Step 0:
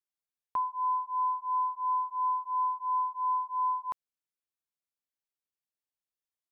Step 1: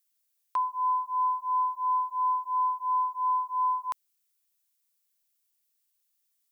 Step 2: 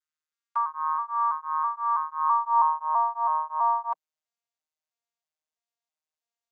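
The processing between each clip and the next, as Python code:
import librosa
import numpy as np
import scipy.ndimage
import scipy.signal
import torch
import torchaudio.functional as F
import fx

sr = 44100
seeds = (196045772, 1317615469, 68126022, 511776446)

y1 = fx.tilt_eq(x, sr, slope=4.5)
y1 = F.gain(torch.from_numpy(y1), 2.5).numpy()
y2 = fx.vocoder_arp(y1, sr, chord='bare fifth', root=51, every_ms=327)
y2 = fx.filter_sweep_highpass(y2, sr, from_hz=1300.0, to_hz=650.0, start_s=2.15, end_s=2.97, q=2.7)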